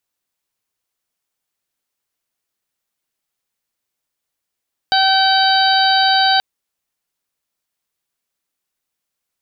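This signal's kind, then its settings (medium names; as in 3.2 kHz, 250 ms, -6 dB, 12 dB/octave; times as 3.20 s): steady additive tone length 1.48 s, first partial 769 Hz, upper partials -4/-18/-7/-5/-4.5 dB, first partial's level -14 dB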